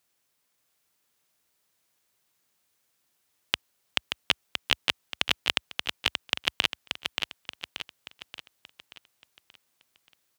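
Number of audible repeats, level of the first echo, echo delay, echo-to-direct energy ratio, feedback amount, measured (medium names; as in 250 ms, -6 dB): 5, -5.5 dB, 580 ms, -4.5 dB, 47%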